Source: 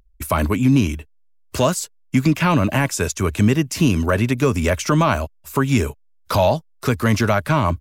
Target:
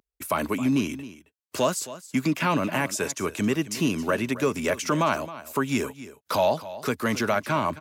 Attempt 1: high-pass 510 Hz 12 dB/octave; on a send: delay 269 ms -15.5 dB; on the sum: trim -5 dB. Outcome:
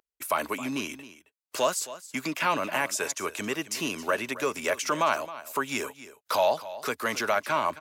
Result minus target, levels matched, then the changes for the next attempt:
250 Hz band -7.0 dB
change: high-pass 220 Hz 12 dB/octave

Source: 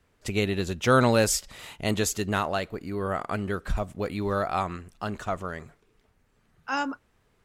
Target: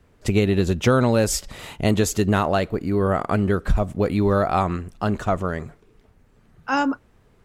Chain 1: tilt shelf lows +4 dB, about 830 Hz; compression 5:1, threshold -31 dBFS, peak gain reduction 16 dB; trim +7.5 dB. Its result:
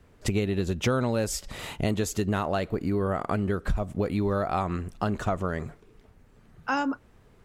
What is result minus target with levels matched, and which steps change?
compression: peak gain reduction +8 dB
change: compression 5:1, threshold -21 dBFS, peak gain reduction 8 dB

